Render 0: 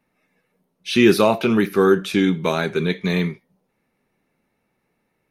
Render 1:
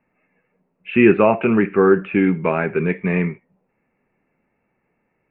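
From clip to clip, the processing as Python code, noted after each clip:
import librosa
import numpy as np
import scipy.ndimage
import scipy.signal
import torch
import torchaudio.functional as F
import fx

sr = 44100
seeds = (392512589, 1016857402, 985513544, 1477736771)

y = scipy.signal.sosfilt(scipy.signal.cheby1(6, 1.0, 2700.0, 'lowpass', fs=sr, output='sos'), x)
y = y * librosa.db_to_amplitude(2.0)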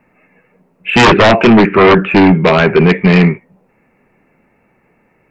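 y = fx.fold_sine(x, sr, drive_db=12, ceiling_db=-1.0)
y = y * librosa.db_to_amplitude(-1.5)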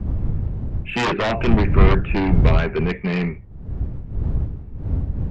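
y = fx.dmg_wind(x, sr, seeds[0], corner_hz=89.0, level_db=-6.0)
y = y * librosa.db_to_amplitude(-14.0)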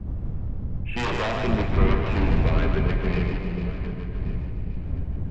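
y = fx.reverse_delay_fb(x, sr, ms=563, feedback_pct=47, wet_db=-10.5)
y = fx.echo_split(y, sr, split_hz=500.0, low_ms=402, high_ms=151, feedback_pct=52, wet_db=-5.0)
y = fx.rev_freeverb(y, sr, rt60_s=2.8, hf_ratio=0.7, predelay_ms=5, drr_db=9.0)
y = y * librosa.db_to_amplitude(-7.5)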